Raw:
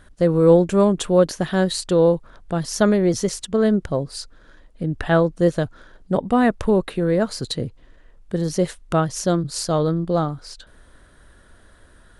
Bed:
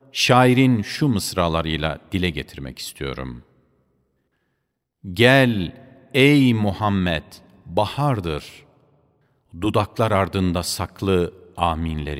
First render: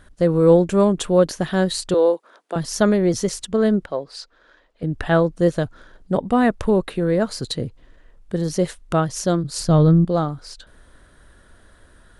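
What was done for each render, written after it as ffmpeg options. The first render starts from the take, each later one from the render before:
-filter_complex "[0:a]asettb=1/sr,asplit=3[s0][s1][s2];[s0]atrim=end=1.944[s3];[s1]atrim=start=1.94:end=2.56,asetpts=PTS-STARTPTS,afade=t=in:d=0.004:c=qsin,afade=t=out:st=0.616:d=0.004:c=qsin,highpass=f=330:w=0.5412,highpass=f=330:w=1.3066[s4];[s2]atrim=start=2.556[s5];[s3][s4]acrossfade=d=0.004:c1=hsin:c2=qsin[s6];[s6][s5]acrossfade=d=0.004:c1=qsin:c2=hsin,asettb=1/sr,asplit=3[s7][s8][s9];[s7]atrim=end=3.854[s10];[s8]atrim=start=3.85:end=4.83,asetpts=PTS-STARTPTS,afade=t=in:d=0.004:c=qsin,afade=t=out:st=0.976:d=0.004:c=qsin,acrossover=split=360 6000:gain=0.141 1 0.158[s11][s12][s13];[s11][s12][s13]amix=inputs=3:normalize=0[s14];[s9]atrim=start=4.826[s15];[s10][s14]acrossfade=d=0.004:c1=hsin:c2=qsin[s16];[s16][s15]acrossfade=d=0.004:c1=qsin:c2=hsin,asettb=1/sr,asplit=3[s17][s18][s19];[s17]atrim=end=9.604[s20];[s18]atrim=start=9.6:end=10.05,asetpts=PTS-STARTPTS,afade=t=in:d=0.004:c=qsin,afade=t=out:st=0.446:d=0.004:c=qsin,bass=f=250:g=12,treble=f=4000:g=-4[s21];[s19]atrim=start=10.046[s22];[s20][s21]acrossfade=d=0.004:c1=hsin:c2=qsin[s23];[s23][s22]acrossfade=d=0.004:c1=qsin:c2=hsin"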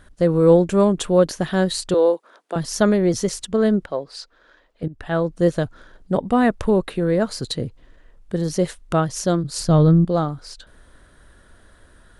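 -filter_complex "[0:a]asplit=2[s0][s1];[s0]atrim=end=4.88,asetpts=PTS-STARTPTS,afade=t=out:st=4.876:d=0.004:c=hsin:silence=0.141254[s2];[s1]atrim=start=4.88,asetpts=PTS-STARTPTS,afade=t=in:d=0.56:silence=0.141254[s3];[s2][s3]concat=n=2:v=0:a=1"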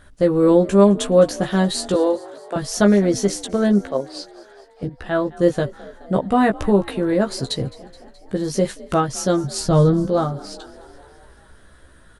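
-filter_complex "[0:a]asplit=2[s0][s1];[s1]adelay=15,volume=0.631[s2];[s0][s2]amix=inputs=2:normalize=0,asplit=7[s3][s4][s5][s6][s7][s8][s9];[s4]adelay=212,afreqshift=48,volume=0.0891[s10];[s5]adelay=424,afreqshift=96,volume=0.0582[s11];[s6]adelay=636,afreqshift=144,volume=0.0376[s12];[s7]adelay=848,afreqshift=192,volume=0.0245[s13];[s8]adelay=1060,afreqshift=240,volume=0.0158[s14];[s9]adelay=1272,afreqshift=288,volume=0.0104[s15];[s3][s10][s11][s12][s13][s14][s15]amix=inputs=7:normalize=0"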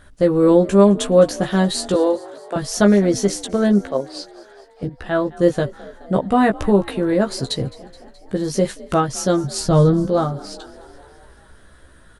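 -af "volume=1.12,alimiter=limit=0.891:level=0:latency=1"

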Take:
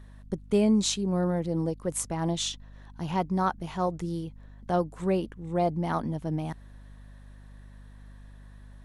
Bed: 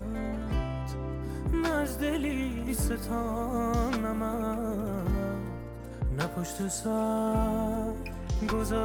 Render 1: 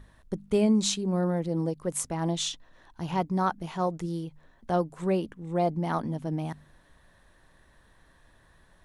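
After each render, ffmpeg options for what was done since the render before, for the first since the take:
-af "bandreject=f=50:t=h:w=4,bandreject=f=100:t=h:w=4,bandreject=f=150:t=h:w=4,bandreject=f=200:t=h:w=4,bandreject=f=250:t=h:w=4"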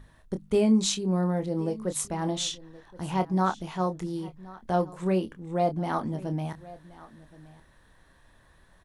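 -filter_complex "[0:a]asplit=2[s0][s1];[s1]adelay=27,volume=0.376[s2];[s0][s2]amix=inputs=2:normalize=0,aecho=1:1:1073:0.1"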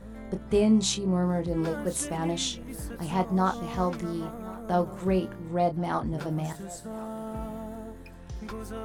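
-filter_complex "[1:a]volume=0.376[s0];[0:a][s0]amix=inputs=2:normalize=0"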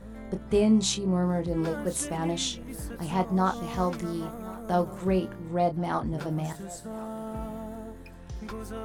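-filter_complex "[0:a]asettb=1/sr,asplit=3[s0][s1][s2];[s0]atrim=end=3.564[s3];[s1]atrim=start=3.56:end=4.98,asetpts=PTS-STARTPTS,afade=t=in:d=0.004:c=qsin,afade=t=out:st=1.416:d=0.004:c=qsin,highshelf=f=5300:g=4.5[s4];[s2]atrim=start=4.976[s5];[s3][s4]acrossfade=d=0.004:c1=hsin:c2=qsin[s6];[s6][s5]acrossfade=d=0.004:c1=qsin:c2=hsin"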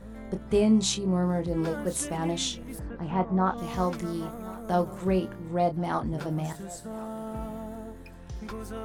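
-filter_complex "[0:a]asplit=3[s0][s1][s2];[s0]afade=t=out:st=2.78:d=0.02[s3];[s1]lowpass=2100,afade=t=in:st=2.78:d=0.02,afade=t=out:st=3.57:d=0.02[s4];[s2]afade=t=in:st=3.57:d=0.02[s5];[s3][s4][s5]amix=inputs=3:normalize=0"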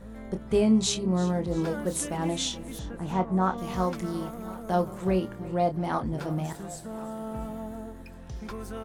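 -af "aecho=1:1:341|682|1023|1364:0.126|0.0604|0.029|0.0139"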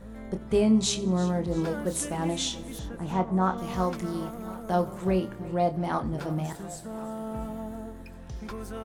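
-af "aecho=1:1:91|182|273:0.0794|0.0326|0.0134"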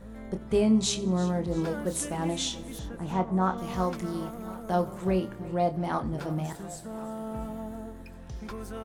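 -af "volume=0.891"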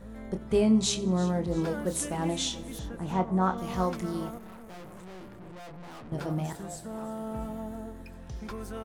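-filter_complex "[0:a]asettb=1/sr,asplit=3[s0][s1][s2];[s0]atrim=end=4.384[s3];[s1]atrim=start=4.38:end=6.12,asetpts=PTS-STARTPTS,afade=t=in:d=0.004:c=qsin,afade=t=out:st=1.736:d=0.004:c=qsin,aeval=exprs='(tanh(158*val(0)+0.55)-tanh(0.55))/158':c=same[s4];[s2]atrim=start=6.116[s5];[s3][s4]acrossfade=d=0.004:c1=hsin:c2=qsin[s6];[s6][s5]acrossfade=d=0.004:c1=qsin:c2=hsin"

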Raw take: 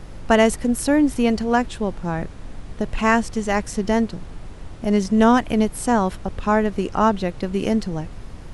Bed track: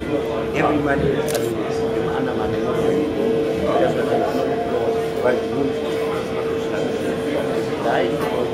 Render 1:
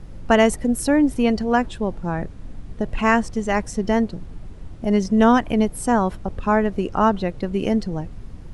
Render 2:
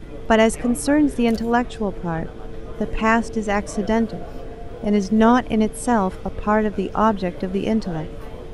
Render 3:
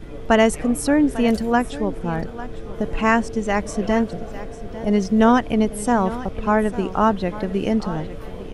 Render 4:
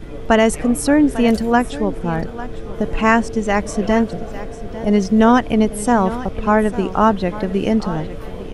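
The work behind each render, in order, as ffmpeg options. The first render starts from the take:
-af "afftdn=nr=8:nf=-37"
-filter_complex "[1:a]volume=0.141[s0];[0:a][s0]amix=inputs=2:normalize=0"
-af "aecho=1:1:849:0.168"
-af "volume=1.5,alimiter=limit=0.891:level=0:latency=1"

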